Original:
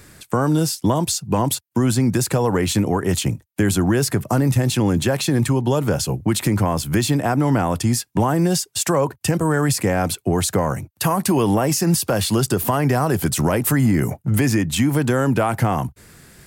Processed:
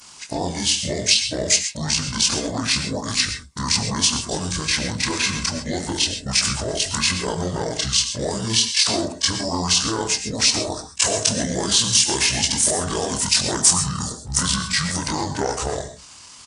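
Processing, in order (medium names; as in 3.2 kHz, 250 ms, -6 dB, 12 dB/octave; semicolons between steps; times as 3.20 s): short-time spectra conjugated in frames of 55 ms; tilt EQ +3.5 dB/octave; flange 1.4 Hz, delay 8.6 ms, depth 4.3 ms, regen -64%; pitch shift -8.5 st; gated-style reverb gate 150 ms rising, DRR 8 dB; trim +4.5 dB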